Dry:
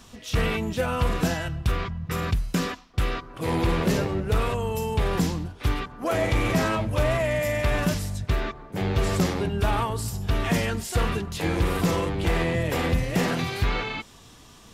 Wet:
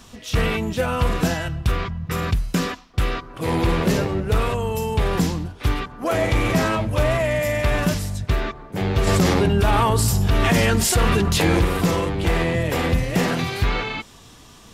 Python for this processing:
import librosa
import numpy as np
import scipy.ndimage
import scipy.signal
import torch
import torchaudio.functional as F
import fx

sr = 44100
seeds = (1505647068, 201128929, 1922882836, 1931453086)

y = fx.env_flatten(x, sr, amount_pct=70, at=(9.07, 11.65))
y = F.gain(torch.from_numpy(y), 3.5).numpy()